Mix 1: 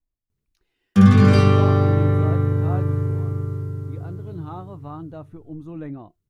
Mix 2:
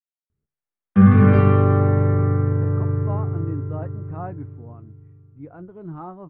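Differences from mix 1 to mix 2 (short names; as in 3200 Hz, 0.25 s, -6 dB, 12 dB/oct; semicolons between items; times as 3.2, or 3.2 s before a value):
speech: entry +1.50 s; master: add LPF 2100 Hz 24 dB/oct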